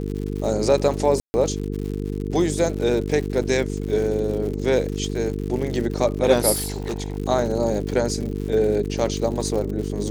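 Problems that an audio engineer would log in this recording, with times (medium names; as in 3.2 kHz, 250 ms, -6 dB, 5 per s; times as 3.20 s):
buzz 50 Hz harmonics 9 -27 dBFS
crackle 130 per s -30 dBFS
1.20–1.34 s: dropout 140 ms
6.53–7.18 s: clipped -22.5 dBFS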